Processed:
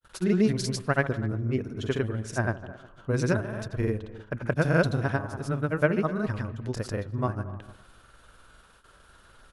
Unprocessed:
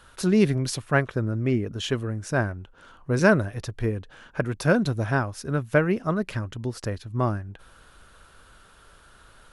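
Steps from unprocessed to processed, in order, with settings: on a send: feedback echo behind a low-pass 125 ms, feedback 49%, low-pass 1.6 kHz, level -13 dB; on the sum: granulator 100 ms, grains 20 per s, pitch spread up and down by 0 st; speakerphone echo 250 ms, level -20 dB; gate with hold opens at -44 dBFS; trim -1.5 dB

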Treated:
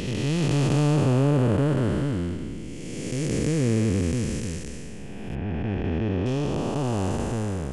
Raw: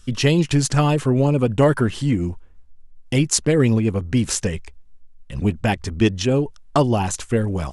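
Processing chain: spectral blur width 794 ms; 5.35–6.26 s: low-pass 2.3 kHz 12 dB/octave

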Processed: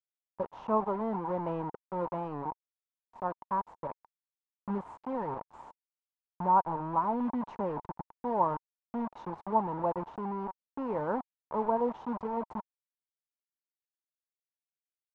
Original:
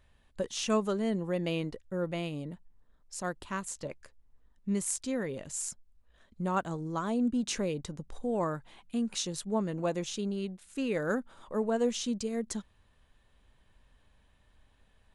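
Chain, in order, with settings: high-pass 58 Hz 24 dB/octave; bit crusher 6-bit; resonant low-pass 930 Hz, resonance Q 8.5; trim -4.5 dB

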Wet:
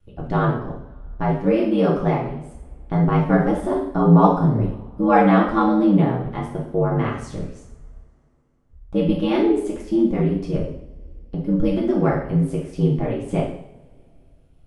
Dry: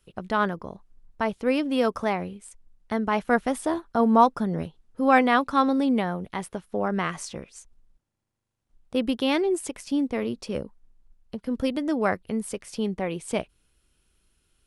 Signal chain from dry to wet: ring modulator 52 Hz; tilt EQ -3.5 dB/octave; two-slope reverb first 0.64 s, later 3.2 s, from -28 dB, DRR -4.5 dB; trim -1.5 dB

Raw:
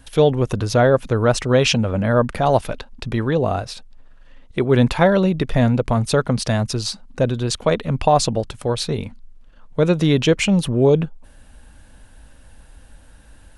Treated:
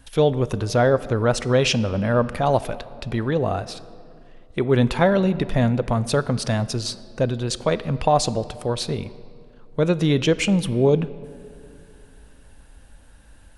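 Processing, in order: on a send: high-pass 140 Hz + reverberation RT60 2.4 s, pre-delay 6 ms, DRR 15 dB; on the sum: trim -3 dB

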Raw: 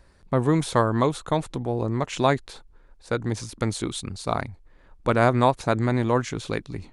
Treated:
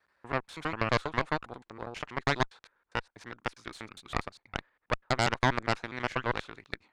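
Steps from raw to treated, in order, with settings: slices played last to first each 81 ms, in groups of 3; band-pass filter 1.6 kHz, Q 1.1; Chebyshev shaper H 6 -7 dB, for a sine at -8.5 dBFS; trim -5.5 dB

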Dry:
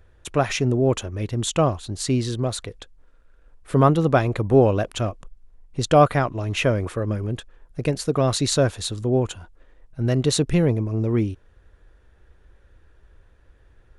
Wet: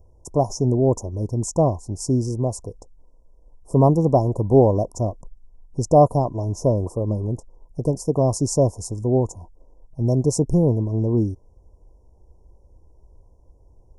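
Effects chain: Chebyshev band-stop 1–5.3 kHz, order 5; treble shelf 6.3 kHz -5 dB; trim +2 dB

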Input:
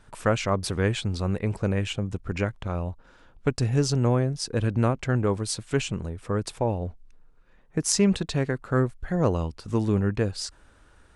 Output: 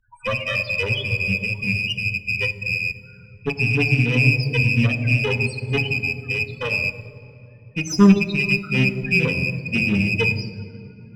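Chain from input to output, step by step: rattle on loud lows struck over -32 dBFS, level -9 dBFS; bass shelf 270 Hz -7 dB; loudest bins only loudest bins 4; one-sided clip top -36 dBFS, bottom -19 dBFS; reverberation RT60 3.4 s, pre-delay 3 ms, DRR 7.5 dB; upward expansion 1.5:1, over -39 dBFS; trim +8 dB

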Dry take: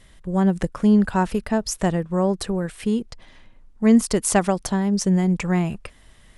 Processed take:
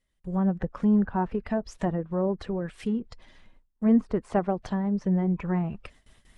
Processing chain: coarse spectral quantiser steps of 15 dB; gate with hold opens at -40 dBFS; low-pass that closes with the level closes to 1.3 kHz, closed at -17.5 dBFS; trim -5.5 dB

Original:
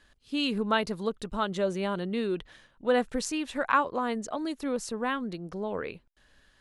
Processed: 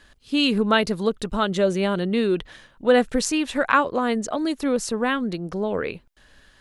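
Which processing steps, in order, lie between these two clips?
dynamic bell 970 Hz, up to -5 dB, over -41 dBFS, Q 2; trim +8.5 dB

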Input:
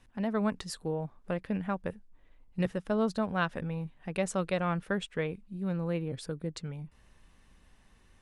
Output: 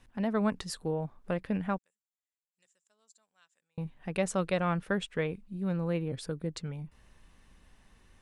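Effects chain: 1.78–3.78 s: band-pass filter 7.3 kHz, Q 12; trim +1 dB

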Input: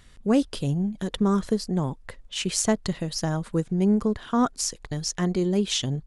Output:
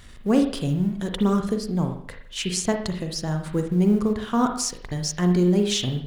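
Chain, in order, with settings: companding laws mixed up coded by mu; 1.40–3.46 s: rotary cabinet horn 6.7 Hz; reverberation RT60 0.60 s, pre-delay 39 ms, DRR 4.5 dB

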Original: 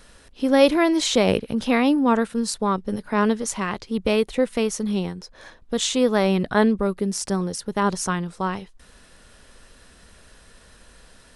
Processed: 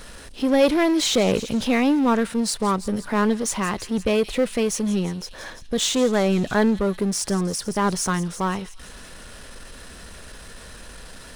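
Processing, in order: on a send: feedback echo behind a high-pass 169 ms, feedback 58%, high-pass 4.1 kHz, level -12.5 dB; on the sum: power-law waveshaper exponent 0.7; trim -4 dB

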